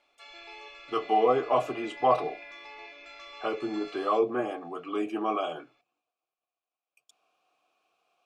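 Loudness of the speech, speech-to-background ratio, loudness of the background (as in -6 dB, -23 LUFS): -29.0 LUFS, 16.0 dB, -45.0 LUFS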